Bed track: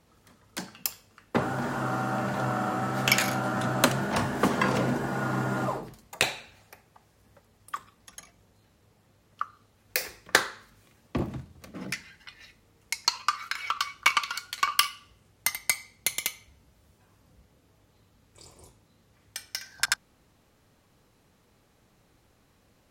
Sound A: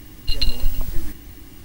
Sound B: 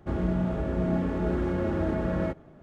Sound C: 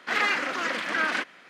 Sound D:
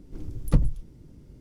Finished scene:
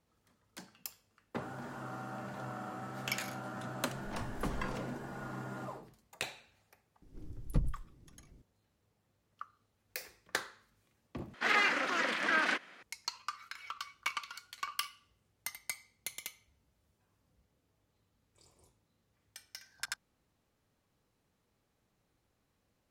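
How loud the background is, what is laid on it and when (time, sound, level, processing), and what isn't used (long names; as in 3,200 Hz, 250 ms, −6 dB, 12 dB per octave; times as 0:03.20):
bed track −14 dB
0:03.93: mix in D −10.5 dB + downward compressor, threshold −25 dBFS
0:07.02: mix in D −11 dB
0:11.34: overwrite with C −4 dB
not used: A, B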